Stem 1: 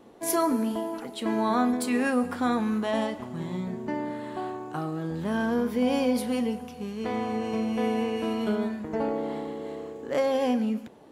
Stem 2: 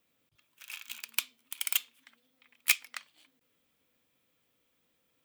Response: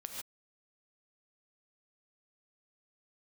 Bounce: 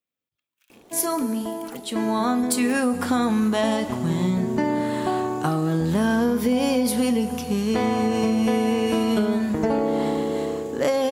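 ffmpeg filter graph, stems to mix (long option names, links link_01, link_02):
-filter_complex "[0:a]bass=frequency=250:gain=3,treble=frequency=4000:gain=8,dynaudnorm=framelen=460:gausssize=7:maxgain=13dB,adelay=700,volume=-0.5dB[link_01];[1:a]alimiter=limit=-16.5dB:level=0:latency=1,volume=-15dB[link_02];[link_01][link_02]amix=inputs=2:normalize=0,acompressor=threshold=-18dB:ratio=6"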